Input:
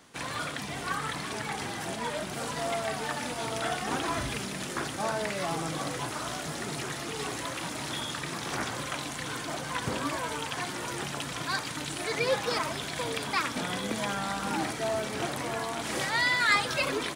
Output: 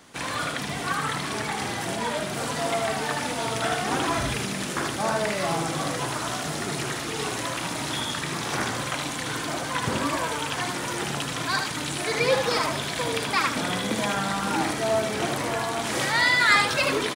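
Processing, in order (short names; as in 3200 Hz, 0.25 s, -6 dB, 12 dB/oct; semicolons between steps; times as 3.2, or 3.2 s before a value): on a send: echo 77 ms -5.5 dB; on the sum: gain +4.5 dB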